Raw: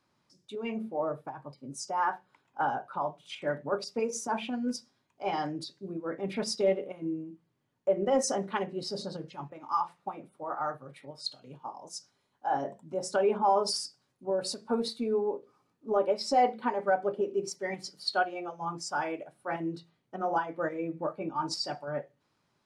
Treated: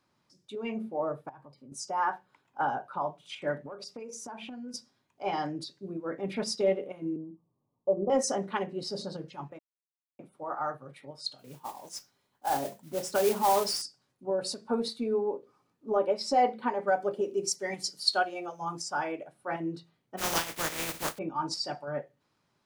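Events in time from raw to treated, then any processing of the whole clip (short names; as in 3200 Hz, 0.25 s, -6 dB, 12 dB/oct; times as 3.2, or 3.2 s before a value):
1.29–1.72 compressor 2.5:1, threshold -51 dBFS
3.58–4.74 compressor 12:1, threshold -38 dBFS
7.16–8.1 Chebyshev low-pass 1200 Hz, order 10
9.59–10.19 mute
11.38–13.82 modulation noise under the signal 12 dB
16.88–18.82 tone controls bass -1 dB, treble +11 dB
20.17–21.17 spectral contrast lowered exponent 0.21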